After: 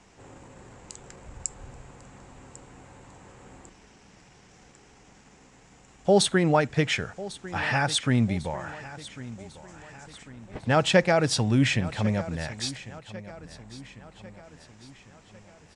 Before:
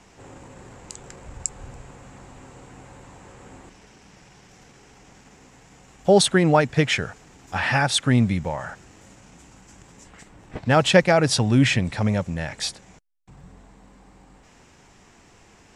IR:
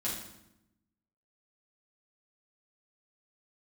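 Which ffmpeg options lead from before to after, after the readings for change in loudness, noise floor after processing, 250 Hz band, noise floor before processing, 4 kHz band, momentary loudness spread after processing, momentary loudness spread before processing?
-4.5 dB, -56 dBFS, -4.0 dB, -53 dBFS, -4.0 dB, 23 LU, 16 LU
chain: -filter_complex "[0:a]aecho=1:1:1098|2196|3294|4392:0.141|0.0706|0.0353|0.0177,asplit=2[s0][s1];[1:a]atrim=start_sample=2205,atrim=end_sample=3528[s2];[s1][s2]afir=irnorm=-1:irlink=0,volume=0.0531[s3];[s0][s3]amix=inputs=2:normalize=0,aresample=22050,aresample=44100,volume=0.596"

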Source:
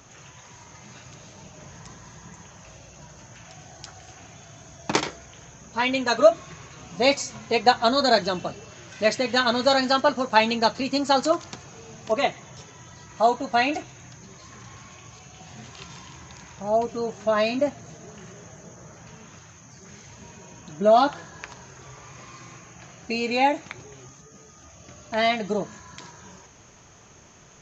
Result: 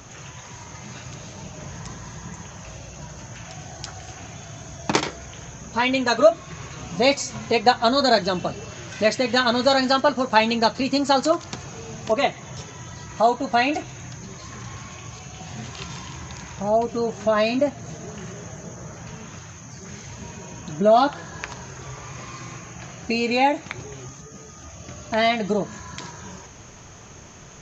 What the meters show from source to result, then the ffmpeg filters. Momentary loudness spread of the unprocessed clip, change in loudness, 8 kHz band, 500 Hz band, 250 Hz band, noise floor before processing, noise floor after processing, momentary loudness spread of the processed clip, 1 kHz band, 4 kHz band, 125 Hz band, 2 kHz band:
22 LU, +1.5 dB, no reading, +1.5 dB, +3.5 dB, -50 dBFS, -43 dBFS, 20 LU, +1.5 dB, +1.5 dB, +7.0 dB, +1.5 dB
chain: -filter_complex "[0:a]lowshelf=f=160:g=4.5,asplit=2[s0][s1];[s1]acompressor=threshold=0.0316:ratio=6,volume=1.33[s2];[s0][s2]amix=inputs=2:normalize=0,volume=0.891"

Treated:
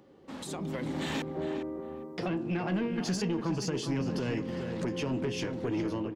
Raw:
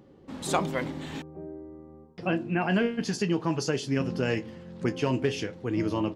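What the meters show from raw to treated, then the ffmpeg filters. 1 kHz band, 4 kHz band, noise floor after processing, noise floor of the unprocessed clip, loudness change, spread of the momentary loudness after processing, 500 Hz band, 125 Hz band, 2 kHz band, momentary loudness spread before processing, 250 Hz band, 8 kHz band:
-6.5 dB, -2.5 dB, -44 dBFS, -54 dBFS, -4.0 dB, 7 LU, -4.5 dB, -3.0 dB, -6.5 dB, 16 LU, -2.5 dB, -3.0 dB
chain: -filter_complex "[0:a]lowshelf=f=220:g=-10.5,acrossover=split=330[s0][s1];[s1]acompressor=threshold=0.00794:ratio=5[s2];[s0][s2]amix=inputs=2:normalize=0,alimiter=level_in=2.24:limit=0.0631:level=0:latency=1:release=216,volume=0.447,dynaudnorm=f=450:g=3:m=3.55,asoftclip=type=tanh:threshold=0.0531,asplit=2[s3][s4];[s4]adelay=407,lowpass=f=2000:p=1,volume=0.447,asplit=2[s5][s6];[s6]adelay=407,lowpass=f=2000:p=1,volume=0.25,asplit=2[s7][s8];[s8]adelay=407,lowpass=f=2000:p=1,volume=0.25[s9];[s5][s7][s9]amix=inputs=3:normalize=0[s10];[s3][s10]amix=inputs=2:normalize=0"

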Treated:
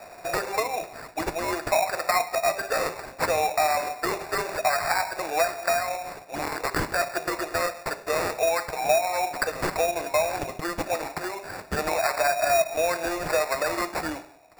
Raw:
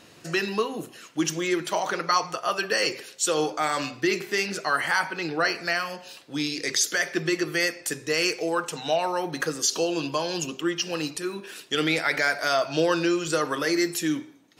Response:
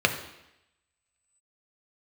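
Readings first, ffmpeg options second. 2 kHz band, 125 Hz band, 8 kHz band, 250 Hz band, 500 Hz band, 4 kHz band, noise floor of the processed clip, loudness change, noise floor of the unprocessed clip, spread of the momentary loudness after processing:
-2.0 dB, -3.0 dB, -4.0 dB, -8.5 dB, +1.5 dB, -6.0 dB, -46 dBFS, -0.5 dB, -51 dBFS, 9 LU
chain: -filter_complex "[0:a]highpass=f=670:t=q:w=7.6,alimiter=limit=0.531:level=0:latency=1:release=456,acrusher=bits=4:mode=log:mix=0:aa=0.000001,acompressor=threshold=0.0398:ratio=2.5,acrusher=samples=14:mix=1:aa=0.000001,asplit=2[s0][s1];[1:a]atrim=start_sample=2205,asetrate=66150,aresample=44100[s2];[s1][s2]afir=irnorm=-1:irlink=0,volume=0.0841[s3];[s0][s3]amix=inputs=2:normalize=0,volume=1.26"

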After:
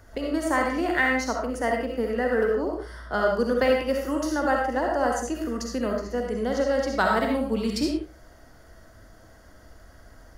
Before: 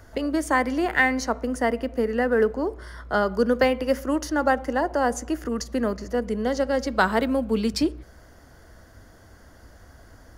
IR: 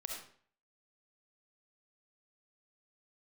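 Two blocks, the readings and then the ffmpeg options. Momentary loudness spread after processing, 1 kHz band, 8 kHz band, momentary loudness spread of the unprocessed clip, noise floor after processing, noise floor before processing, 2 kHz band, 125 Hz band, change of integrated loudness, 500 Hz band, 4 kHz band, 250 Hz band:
7 LU, -1.0 dB, -1.5 dB, 7 LU, -51 dBFS, -51 dBFS, -1.5 dB, -1.5 dB, -1.5 dB, -0.5 dB, -1.0 dB, -2.0 dB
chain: -filter_complex "[1:a]atrim=start_sample=2205,afade=t=out:st=0.24:d=0.01,atrim=end_sample=11025[s0];[0:a][s0]afir=irnorm=-1:irlink=0"

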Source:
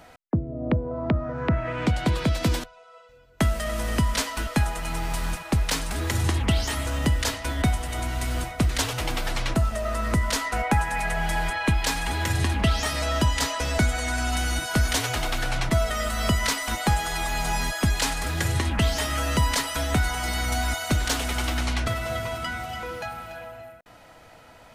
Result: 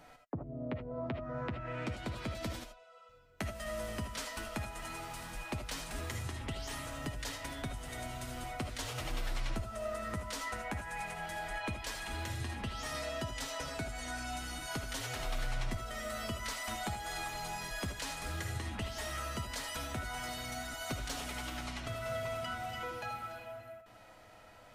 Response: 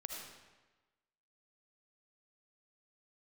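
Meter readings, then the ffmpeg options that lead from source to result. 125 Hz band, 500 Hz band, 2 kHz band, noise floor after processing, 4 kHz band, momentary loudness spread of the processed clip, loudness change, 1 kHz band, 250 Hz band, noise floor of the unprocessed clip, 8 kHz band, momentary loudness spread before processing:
-16.5 dB, -11.0 dB, -13.0 dB, -57 dBFS, -13.0 dB, 5 LU, -14.0 dB, -12.0 dB, -15.0 dB, -50 dBFS, -13.5 dB, 6 LU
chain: -filter_complex "[0:a]acompressor=threshold=0.0398:ratio=6,flanger=delay=6.8:depth=3.5:regen=-35:speed=0.14:shape=triangular[s0];[1:a]atrim=start_sample=2205,atrim=end_sample=3969[s1];[s0][s1]afir=irnorm=-1:irlink=0"

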